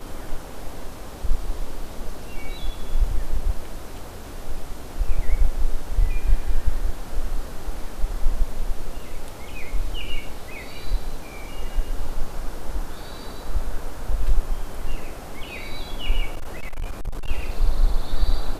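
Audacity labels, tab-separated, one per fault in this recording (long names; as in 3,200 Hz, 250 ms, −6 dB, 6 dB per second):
16.330000	17.300000	clipping −23 dBFS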